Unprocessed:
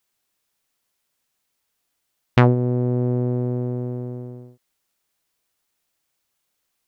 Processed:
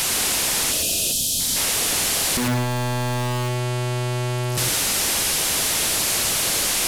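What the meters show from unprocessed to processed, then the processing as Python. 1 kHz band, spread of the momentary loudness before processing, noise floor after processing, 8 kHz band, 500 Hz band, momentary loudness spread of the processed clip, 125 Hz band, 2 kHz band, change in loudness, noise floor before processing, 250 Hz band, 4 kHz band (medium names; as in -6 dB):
+5.5 dB, 15 LU, -24 dBFS, no reading, -1.0 dB, 6 LU, -2.0 dB, +11.0 dB, +2.0 dB, -76 dBFS, -3.0 dB, +24.5 dB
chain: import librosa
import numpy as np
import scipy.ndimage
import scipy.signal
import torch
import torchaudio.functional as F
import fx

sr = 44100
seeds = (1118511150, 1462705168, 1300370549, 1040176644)

p1 = fx.delta_mod(x, sr, bps=64000, step_db=-16.0)
p2 = fx.spec_box(p1, sr, start_s=0.71, length_s=0.69, low_hz=720.0, high_hz=2400.0, gain_db=-26)
p3 = fx.peak_eq(p2, sr, hz=1300.0, db=-3.5, octaves=1.4)
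p4 = 10.0 ** (-19.0 / 20.0) * (np.abs((p3 / 10.0 ** (-19.0 / 20.0) + 3.0) % 4.0 - 2.0) - 1.0)
p5 = p4 + fx.echo_single(p4, sr, ms=109, db=-7.5, dry=0)
p6 = fx.spec_box(p5, sr, start_s=1.12, length_s=0.44, low_hz=280.0, high_hz=3000.0, gain_db=-10)
y = F.gain(torch.from_numpy(p6), 2.0).numpy()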